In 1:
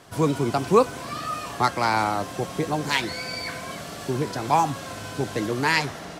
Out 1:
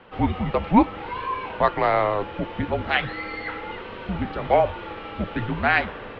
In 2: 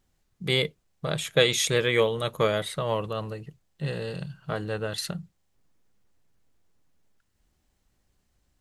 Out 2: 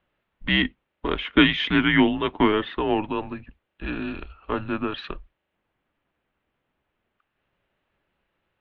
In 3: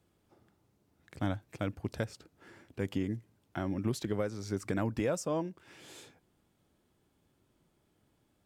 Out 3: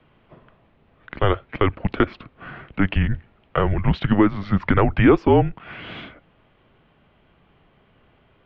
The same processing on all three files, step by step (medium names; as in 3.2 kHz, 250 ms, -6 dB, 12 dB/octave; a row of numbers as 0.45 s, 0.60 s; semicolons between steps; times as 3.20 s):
resonant low shelf 190 Hz +11.5 dB, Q 1.5; mistuned SSB -200 Hz 280–3300 Hz; peak normalisation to -3 dBFS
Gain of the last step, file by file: +3.0 dB, +6.0 dB, +20.0 dB